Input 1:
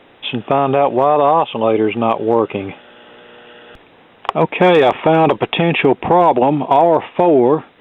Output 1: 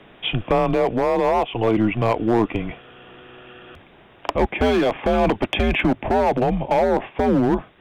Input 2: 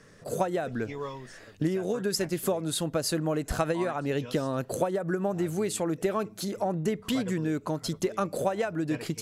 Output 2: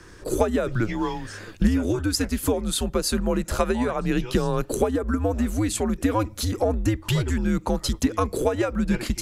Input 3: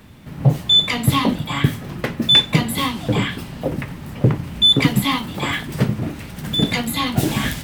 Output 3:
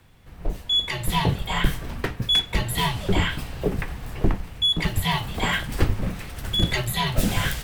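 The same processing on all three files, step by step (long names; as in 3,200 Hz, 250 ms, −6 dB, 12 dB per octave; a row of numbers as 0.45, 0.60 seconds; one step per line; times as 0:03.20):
hard clipping −7.5 dBFS
frequency shifter −110 Hz
speech leveller within 4 dB 0.5 s
normalise the peak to −6 dBFS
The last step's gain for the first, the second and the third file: −4.5, +6.0, −4.5 decibels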